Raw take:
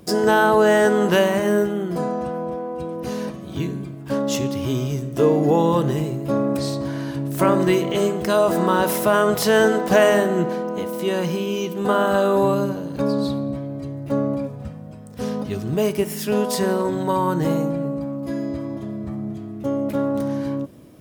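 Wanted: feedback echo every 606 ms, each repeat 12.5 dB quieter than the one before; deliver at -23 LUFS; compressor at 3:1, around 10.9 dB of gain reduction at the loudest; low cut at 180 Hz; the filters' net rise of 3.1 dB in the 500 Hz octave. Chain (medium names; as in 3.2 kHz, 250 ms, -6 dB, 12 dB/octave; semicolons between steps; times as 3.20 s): high-pass 180 Hz; peaking EQ 500 Hz +4 dB; compression 3:1, threshold -24 dBFS; feedback delay 606 ms, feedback 24%, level -12.5 dB; trim +3.5 dB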